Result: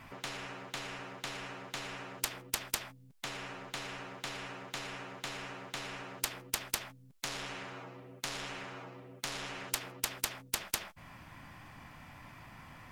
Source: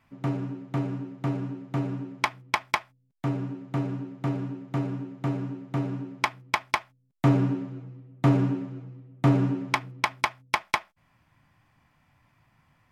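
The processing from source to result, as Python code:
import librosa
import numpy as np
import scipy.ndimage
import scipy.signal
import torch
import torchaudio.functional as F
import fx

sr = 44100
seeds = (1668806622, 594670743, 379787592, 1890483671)

p1 = fx.fold_sine(x, sr, drive_db=8, ceiling_db=-11.5)
p2 = x + F.gain(torch.from_numpy(p1), -9.5).numpy()
p3 = fx.spectral_comp(p2, sr, ratio=10.0)
y = F.gain(torch.from_numpy(p3), 1.5).numpy()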